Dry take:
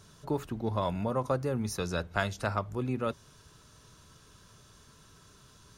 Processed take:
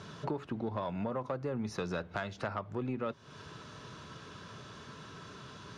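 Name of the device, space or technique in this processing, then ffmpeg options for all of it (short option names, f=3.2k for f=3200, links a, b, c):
AM radio: -af "highpass=130,lowpass=3.4k,acompressor=threshold=-44dB:ratio=6,asoftclip=type=tanh:threshold=-35.5dB,volume=11.5dB"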